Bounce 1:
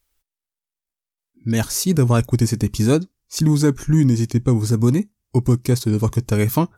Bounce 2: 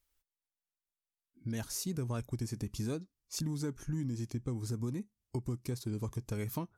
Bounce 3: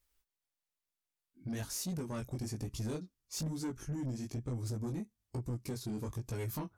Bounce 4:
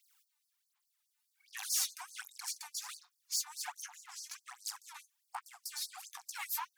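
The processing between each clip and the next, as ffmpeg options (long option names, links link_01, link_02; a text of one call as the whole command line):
ffmpeg -i in.wav -af "acompressor=threshold=-28dB:ratio=3,volume=-9dB" out.wav
ffmpeg -i in.wav -af "flanger=delay=16.5:depth=6.6:speed=1.1,asoftclip=type=tanh:threshold=-37dB,volume=4.5dB" out.wav
ffmpeg -i in.wav -af "aeval=exprs='clip(val(0),-1,0.00501)':channel_layout=same,aphaser=in_gain=1:out_gain=1:delay=3.4:decay=0.73:speed=1.3:type=sinusoidal,afftfilt=real='re*gte(b*sr/1024,690*pow(4300/690,0.5+0.5*sin(2*PI*4.8*pts/sr)))':imag='im*gte(b*sr/1024,690*pow(4300/690,0.5+0.5*sin(2*PI*4.8*pts/sr)))':win_size=1024:overlap=0.75,volume=7dB" out.wav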